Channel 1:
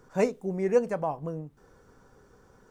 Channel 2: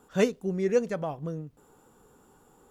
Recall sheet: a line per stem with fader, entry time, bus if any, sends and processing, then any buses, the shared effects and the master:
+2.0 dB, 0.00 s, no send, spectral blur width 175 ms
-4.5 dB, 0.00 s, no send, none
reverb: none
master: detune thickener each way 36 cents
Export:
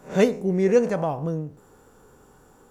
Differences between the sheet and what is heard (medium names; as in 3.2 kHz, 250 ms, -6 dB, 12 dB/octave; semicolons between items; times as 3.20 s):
stem 2 -4.5 dB -> +3.0 dB; master: missing detune thickener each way 36 cents